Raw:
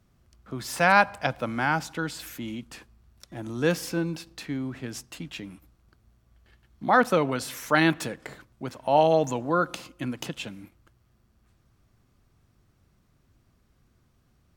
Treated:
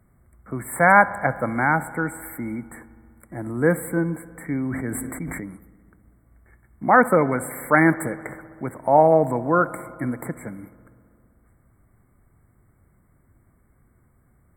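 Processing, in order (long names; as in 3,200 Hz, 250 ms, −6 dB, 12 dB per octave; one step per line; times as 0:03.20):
linear-phase brick-wall band-stop 2,300–7,500 Hz
feedback echo with a low-pass in the loop 65 ms, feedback 84%, low-pass 4,700 Hz, level −21 dB
0:04.29–0:05.40: level that may fall only so fast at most 24 dB per second
level +5 dB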